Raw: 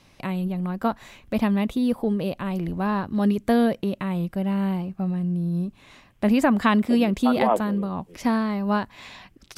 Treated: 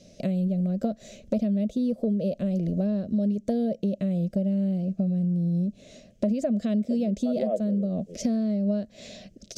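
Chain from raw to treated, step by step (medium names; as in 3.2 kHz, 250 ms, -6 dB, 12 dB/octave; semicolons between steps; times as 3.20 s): peaking EQ 3.4 kHz +2.5 dB; in parallel at +2.5 dB: peak limiter -14 dBFS, peak gain reduction 7 dB; on the sum: FFT filter 130 Hz 0 dB, 210 Hz +11 dB, 310 Hz 0 dB, 630 Hz +13 dB, 900 Hz -26 dB, 1.4 kHz -13 dB, 3.4 kHz -5 dB, 6.4 kHz +8 dB, 11 kHz -9 dB; compression 6:1, threshold -16 dBFS, peak gain reduction 15 dB; trim -7.5 dB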